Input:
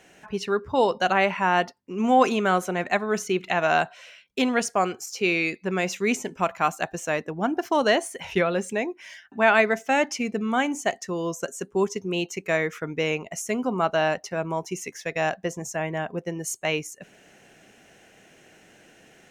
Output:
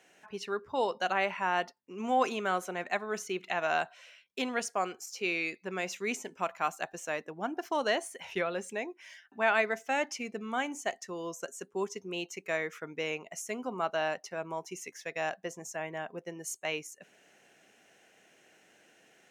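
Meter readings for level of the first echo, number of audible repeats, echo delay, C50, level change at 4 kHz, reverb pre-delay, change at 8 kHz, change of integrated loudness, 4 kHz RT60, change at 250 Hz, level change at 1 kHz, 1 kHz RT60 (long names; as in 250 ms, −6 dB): no echo audible, no echo audible, no echo audible, no reverb audible, −7.5 dB, no reverb audible, −7.5 dB, −9.0 dB, no reverb audible, −12.5 dB, −8.5 dB, no reverb audible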